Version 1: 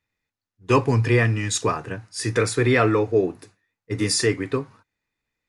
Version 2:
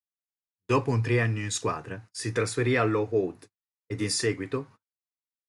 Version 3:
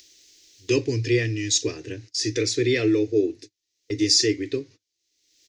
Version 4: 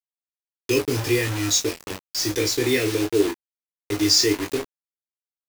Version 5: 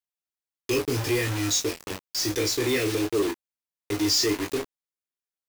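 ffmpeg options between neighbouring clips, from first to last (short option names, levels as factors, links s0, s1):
-af "agate=range=0.0251:threshold=0.00891:ratio=16:detection=peak,volume=0.501"
-af "firequalizer=gain_entry='entry(120,0);entry(190,-14);entry(310,10);entry(780,-17);entry(1200,-19);entry(1900,1);entry(4100,11);entry(6200,14);entry(9200,-10)':delay=0.05:min_phase=1,acompressor=mode=upward:threshold=0.0501:ratio=2.5"
-af "acrusher=bits=4:mix=0:aa=0.000001,aecho=1:1:20|32:0.562|0.299"
-af "asoftclip=type=tanh:threshold=0.141,volume=0.891"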